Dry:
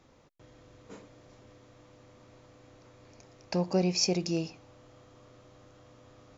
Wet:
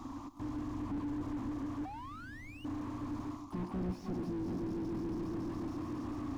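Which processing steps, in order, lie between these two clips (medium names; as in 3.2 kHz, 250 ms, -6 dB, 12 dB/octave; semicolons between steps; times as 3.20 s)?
on a send: multi-head delay 143 ms, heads all three, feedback 63%, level -17.5 dB; on the sum: harmony voices -7 st -13 dB, +12 st -17 dB; reverse; compression 12:1, threshold -39 dBFS, peak gain reduction 18 dB; reverse; FFT filter 110 Hz 0 dB, 160 Hz -10 dB, 290 Hz +12 dB, 480 Hz -27 dB, 680 Hz -5 dB, 1.1 kHz +9 dB, 1.6 kHz -16 dB, 7 kHz -3 dB; painted sound rise, 1.85–2.65 s, 740–3000 Hz -44 dBFS; slew-rate limiter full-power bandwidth 0.89 Hz; trim +15 dB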